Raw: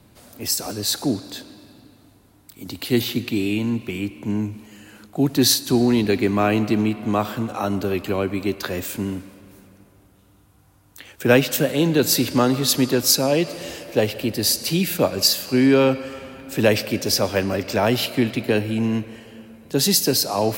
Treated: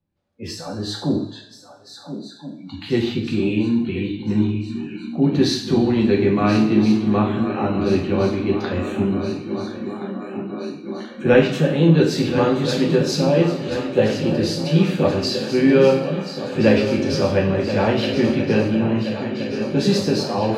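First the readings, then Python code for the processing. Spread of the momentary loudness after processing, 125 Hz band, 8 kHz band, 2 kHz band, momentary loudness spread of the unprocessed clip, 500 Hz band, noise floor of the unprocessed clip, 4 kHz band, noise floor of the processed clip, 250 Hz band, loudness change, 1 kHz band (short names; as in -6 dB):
13 LU, +4.5 dB, -12.5 dB, -0.5 dB, 12 LU, +3.0 dB, -55 dBFS, -5.0 dB, -42 dBFS, +3.0 dB, +1.0 dB, +0.5 dB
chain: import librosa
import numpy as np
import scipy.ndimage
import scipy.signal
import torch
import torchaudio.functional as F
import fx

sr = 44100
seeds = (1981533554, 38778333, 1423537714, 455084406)

y = scipy.signal.sosfilt(scipy.signal.butter(2, 3600.0, 'lowpass', fs=sr, output='sos'), x)
y = fx.low_shelf(y, sr, hz=270.0, db=7.5)
y = fx.echo_swing(y, sr, ms=1373, ratio=3, feedback_pct=68, wet_db=-11)
y = fx.noise_reduce_blind(y, sr, reduce_db=28)
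y = fx.rev_double_slope(y, sr, seeds[0], early_s=0.54, late_s=2.8, knee_db=-27, drr_db=-2.0)
y = y * librosa.db_to_amplitude(-5.0)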